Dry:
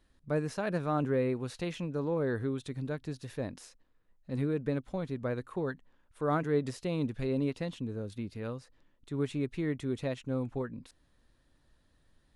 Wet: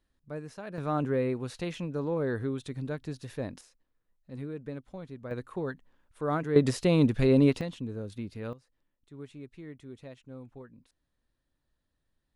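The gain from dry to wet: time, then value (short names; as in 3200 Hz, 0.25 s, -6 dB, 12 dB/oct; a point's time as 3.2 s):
-8 dB
from 0.78 s +1 dB
from 3.61 s -7 dB
from 5.31 s 0 dB
from 6.56 s +9.5 dB
from 7.61 s +0.5 dB
from 8.53 s -12 dB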